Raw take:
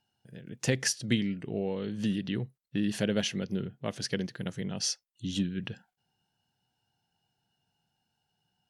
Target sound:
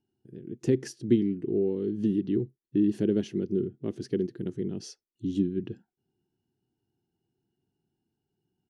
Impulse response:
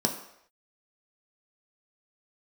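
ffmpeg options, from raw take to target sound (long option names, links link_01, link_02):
-af "firequalizer=gain_entry='entry(180,0);entry(360,14);entry(540,-10);entry(1900,-14)':delay=0.05:min_phase=1"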